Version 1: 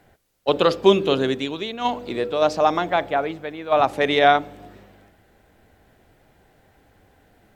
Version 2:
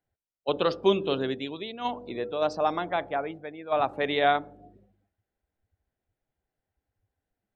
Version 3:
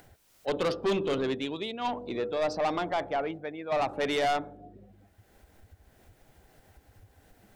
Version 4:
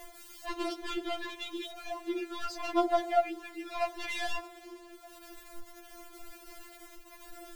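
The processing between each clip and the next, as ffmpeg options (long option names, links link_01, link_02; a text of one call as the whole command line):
ffmpeg -i in.wav -af "afftdn=noise_reduction=23:noise_floor=-39,volume=-7.5dB" out.wav
ffmpeg -i in.wav -af "acompressor=mode=upward:threshold=-40dB:ratio=2.5,asoftclip=type=tanh:threshold=-25.5dB,volume=2.5dB" out.wav
ffmpeg -i in.wav -af "aeval=exprs='val(0)+0.5*0.00891*sgn(val(0))':channel_layout=same,afftfilt=real='re*4*eq(mod(b,16),0)':imag='im*4*eq(mod(b,16),0)':win_size=2048:overlap=0.75" out.wav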